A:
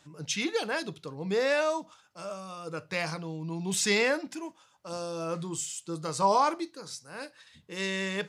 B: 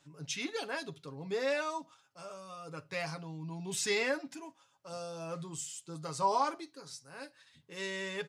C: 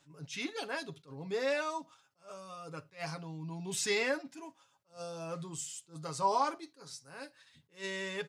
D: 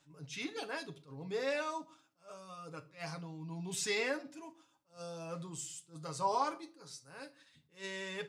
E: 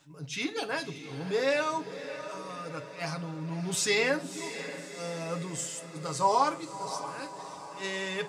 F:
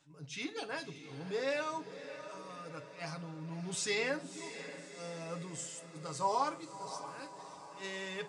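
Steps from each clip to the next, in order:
comb filter 7.3 ms, depth 59%; level −7.5 dB
level that may rise only so fast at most 240 dB per second
rectangular room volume 370 cubic metres, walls furnished, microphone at 0.52 metres; level −3 dB
feedback delay with all-pass diffusion 600 ms, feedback 56%, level −11.5 dB; level +8 dB
downsampling to 22,050 Hz; level −7.5 dB

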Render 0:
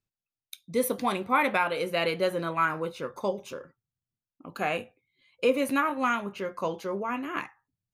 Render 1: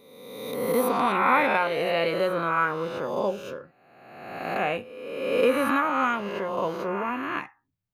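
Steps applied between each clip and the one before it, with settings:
peak hold with a rise ahead of every peak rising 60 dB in 1.35 s
parametric band 8,100 Hz −10 dB 1.7 octaves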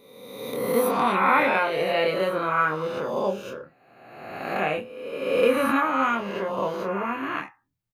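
double-tracking delay 26 ms −4.5 dB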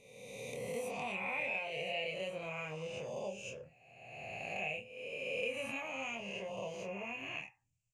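drawn EQ curve 130 Hz 0 dB, 310 Hz −18 dB, 460 Hz −9 dB, 700 Hz −5 dB, 1,400 Hz −27 dB, 2,600 Hz +7 dB, 3,800 Hz −12 dB, 7,300 Hz +9 dB, 15,000 Hz −27 dB
downward compressor 2 to 1, threshold −44 dBFS, peak gain reduction 12.5 dB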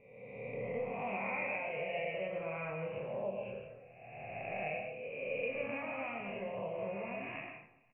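Butterworth low-pass 2,400 Hz 48 dB per octave
repeating echo 271 ms, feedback 40%, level −23.5 dB
on a send at −3 dB: convolution reverb RT60 0.65 s, pre-delay 80 ms
on the sum: level +1 dB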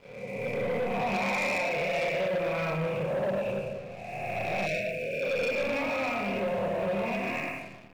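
rectangular room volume 1,500 cubic metres, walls mixed, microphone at 0.96 metres
leveller curve on the samples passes 3
time-frequency box erased 0:04.66–0:05.23, 690–1,400 Hz

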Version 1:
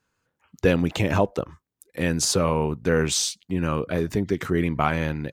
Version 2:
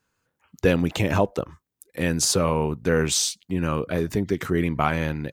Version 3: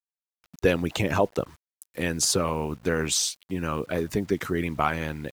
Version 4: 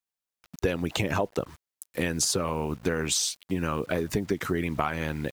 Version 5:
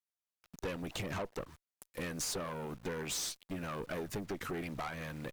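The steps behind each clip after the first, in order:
high-shelf EQ 10,000 Hz +5.5 dB
harmonic and percussive parts rebalanced harmonic −8 dB; bit reduction 9 bits
downward compressor, threshold −27 dBFS, peak gain reduction 11 dB; level +4 dB
tube saturation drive 29 dB, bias 0.65; level −4.5 dB

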